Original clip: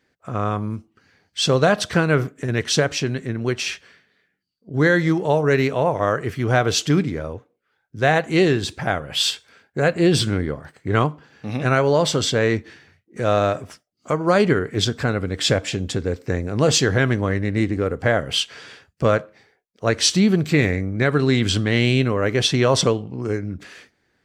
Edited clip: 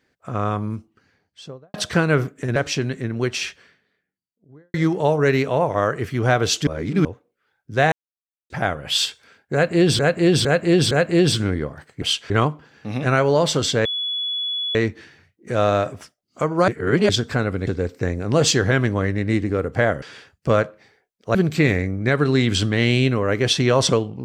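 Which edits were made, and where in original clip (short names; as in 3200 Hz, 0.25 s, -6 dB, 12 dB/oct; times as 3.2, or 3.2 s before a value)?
0.76–1.74 studio fade out
2.56–2.81 cut
3.6–4.99 studio fade out
6.92–7.3 reverse
8.17–8.75 mute
9.78–10.24 loop, 4 plays
12.44 add tone 3400 Hz -22 dBFS 0.90 s
14.37–14.78 reverse
15.36–15.94 cut
18.29–18.57 move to 10.89
19.9–20.29 cut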